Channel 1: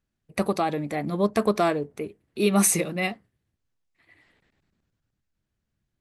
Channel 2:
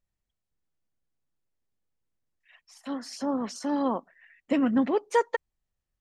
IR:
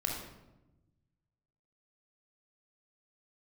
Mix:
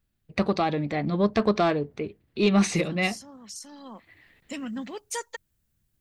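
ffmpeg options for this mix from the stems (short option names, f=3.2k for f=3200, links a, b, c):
-filter_complex "[0:a]lowpass=f=4.6k:w=0.5412,lowpass=f=4.6k:w=1.3066,volume=-0.5dB[a];[1:a]equalizer=f=200:t=o:w=0.36:g=9,crystalizer=i=8.5:c=0,volume=-15.5dB,afade=t=in:st=3.82:d=0.34:silence=0.421697[b];[a][b]amix=inputs=2:normalize=0,lowshelf=f=150:g=8,asoftclip=type=tanh:threshold=-11dB,highshelf=f=3.7k:g=9.5"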